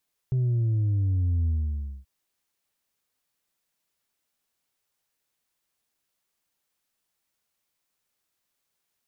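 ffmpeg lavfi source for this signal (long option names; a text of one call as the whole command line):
ffmpeg -f lavfi -i "aevalsrc='0.0841*clip((1.73-t)/0.58,0,1)*tanh(1.33*sin(2*PI*130*1.73/log(65/130)*(exp(log(65/130)*t/1.73)-1)))/tanh(1.33)':duration=1.73:sample_rate=44100" out.wav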